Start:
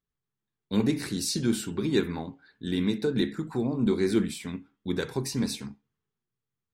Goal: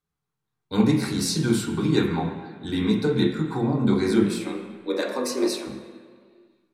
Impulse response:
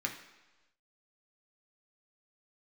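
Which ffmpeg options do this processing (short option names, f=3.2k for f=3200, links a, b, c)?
-filter_complex "[0:a]lowshelf=f=80:g=-8,asplit=3[a][b][c];[a]afade=t=out:st=4.24:d=0.02[d];[b]afreqshift=120,afade=t=in:st=4.24:d=0.02,afade=t=out:st=5.66:d=0.02[e];[c]afade=t=in:st=5.66:d=0.02[f];[d][e][f]amix=inputs=3:normalize=0[g];[1:a]atrim=start_sample=2205,asetrate=25578,aresample=44100[h];[g][h]afir=irnorm=-1:irlink=0"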